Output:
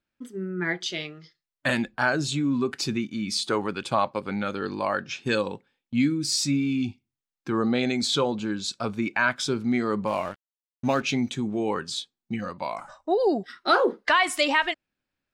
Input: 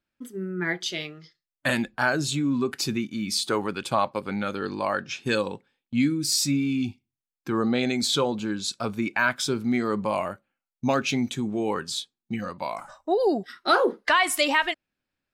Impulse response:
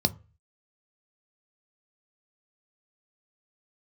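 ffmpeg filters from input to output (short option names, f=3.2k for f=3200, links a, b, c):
-filter_complex "[0:a]equalizer=f=13k:w=1.3:g=-14.5,asettb=1/sr,asplit=3[a][b][c];[a]atrim=end=10.074[d];[b]atrim=start=10.07:end=11.03,asetpts=PTS-STARTPTS,afade=t=in:d=0.004:c=qsin,afade=t=out:st=0.956:d=0.004:c=qsin,aeval=exprs='sgn(val(0))*max(abs(val(0))-0.00708,0)':c=same[e];[c]atrim=start=11.026[f];[d][e]acrossfade=d=0.004:c1=hsin:c2=qsin[g];[g][f]acrossfade=d=0.004:c1=qsin:c2=hsin"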